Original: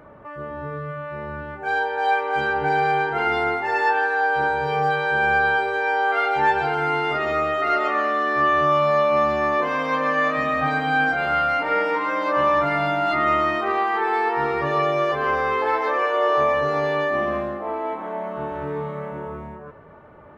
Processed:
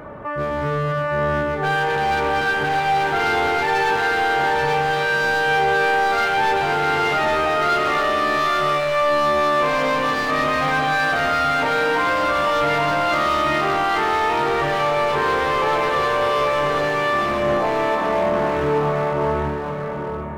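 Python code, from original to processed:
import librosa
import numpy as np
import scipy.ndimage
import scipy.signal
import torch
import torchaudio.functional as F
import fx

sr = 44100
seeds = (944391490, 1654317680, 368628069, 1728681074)

p1 = fx.over_compress(x, sr, threshold_db=-28.0, ratio=-1.0)
p2 = x + F.gain(torch.from_numpy(p1), 1.0).numpy()
p3 = np.clip(10.0 ** (17.5 / 20.0) * p2, -1.0, 1.0) / 10.0 ** (17.5 / 20.0)
y = p3 + 10.0 ** (-5.0 / 20.0) * np.pad(p3, (int(830 * sr / 1000.0), 0))[:len(p3)]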